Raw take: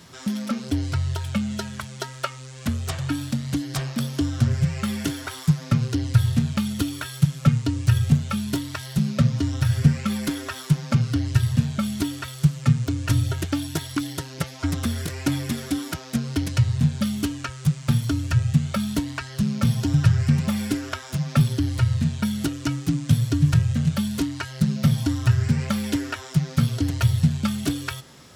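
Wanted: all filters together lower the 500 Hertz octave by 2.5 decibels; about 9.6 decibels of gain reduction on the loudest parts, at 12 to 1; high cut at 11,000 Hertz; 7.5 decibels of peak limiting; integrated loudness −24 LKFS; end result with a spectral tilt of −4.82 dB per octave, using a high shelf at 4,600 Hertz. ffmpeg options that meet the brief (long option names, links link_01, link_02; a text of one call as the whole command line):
ffmpeg -i in.wav -af "lowpass=11000,equalizer=frequency=500:width_type=o:gain=-3.5,highshelf=frequency=4600:gain=7,acompressor=threshold=-21dB:ratio=12,volume=5dB,alimiter=limit=-12dB:level=0:latency=1" out.wav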